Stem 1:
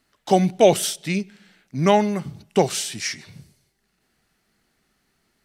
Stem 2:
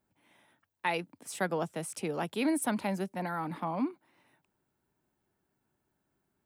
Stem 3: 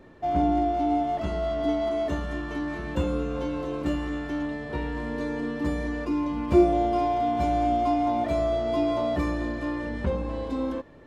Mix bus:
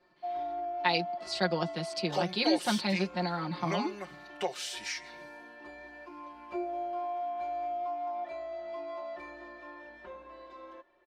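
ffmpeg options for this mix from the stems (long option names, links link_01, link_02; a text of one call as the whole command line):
ffmpeg -i stem1.wav -i stem2.wav -i stem3.wav -filter_complex "[0:a]highshelf=frequency=10000:gain=9,adelay=1850,volume=-6dB[link_01];[1:a]lowpass=frequency=4500:width_type=q:width=11,volume=-2dB[link_02];[2:a]aecho=1:1:3:0.55,volume=-15dB[link_03];[link_01][link_03]amix=inputs=2:normalize=0,acrossover=split=450 5100:gain=0.0891 1 0.178[link_04][link_05][link_06];[link_04][link_05][link_06]amix=inputs=3:normalize=0,acompressor=threshold=-39dB:ratio=2,volume=0dB[link_07];[link_02][link_07]amix=inputs=2:normalize=0,aecho=1:1:5.6:0.94" out.wav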